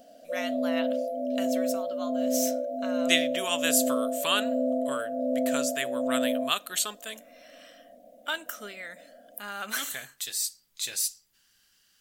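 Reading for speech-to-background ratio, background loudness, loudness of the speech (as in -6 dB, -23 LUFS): -1.5 dB, -29.5 LUFS, -31.0 LUFS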